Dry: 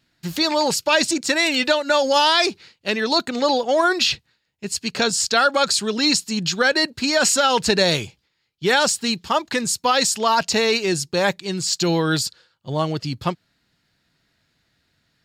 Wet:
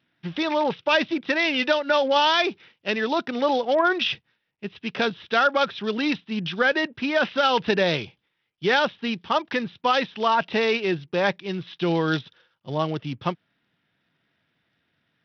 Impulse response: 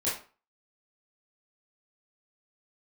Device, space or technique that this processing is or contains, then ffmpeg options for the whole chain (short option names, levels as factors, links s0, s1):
Bluetooth headset: -af "highpass=130,aresample=8000,aresample=44100,volume=0.75" -ar 44100 -c:a sbc -b:a 64k